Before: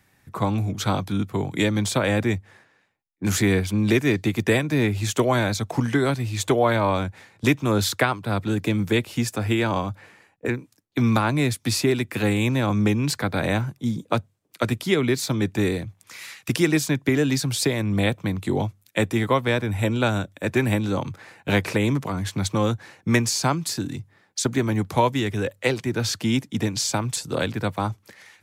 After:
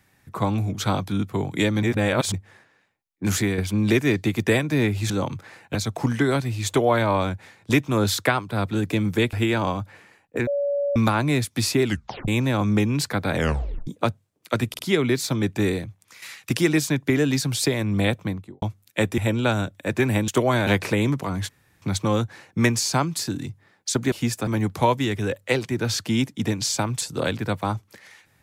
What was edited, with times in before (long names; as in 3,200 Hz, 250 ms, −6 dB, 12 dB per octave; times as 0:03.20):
0:01.83–0:02.34: reverse
0:03.33–0:03.58: fade out, to −7.5 dB
0:05.10–0:05.49: swap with 0:20.85–0:21.50
0:09.07–0:09.42: move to 0:24.62
0:10.56–0:11.05: beep over 569 Hz −20.5 dBFS
0:11.94: tape stop 0.43 s
0:13.44: tape stop 0.52 s
0:14.78: stutter 0.05 s, 3 plays
0:15.71–0:16.21: fade out, to −7.5 dB
0:18.16–0:18.61: fade out and dull
0:19.17–0:19.75: remove
0:22.32: splice in room tone 0.33 s